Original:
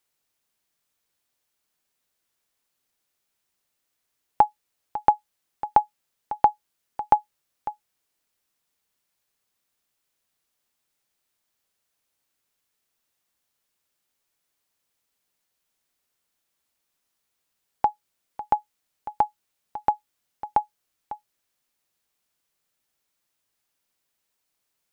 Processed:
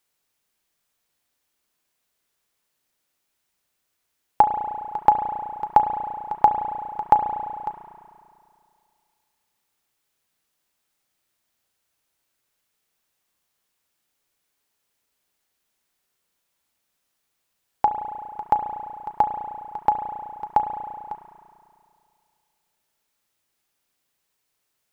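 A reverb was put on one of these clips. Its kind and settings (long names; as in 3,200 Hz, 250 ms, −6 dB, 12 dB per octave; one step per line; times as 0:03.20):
spring reverb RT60 2.4 s, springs 34 ms, chirp 70 ms, DRR 5 dB
level +2 dB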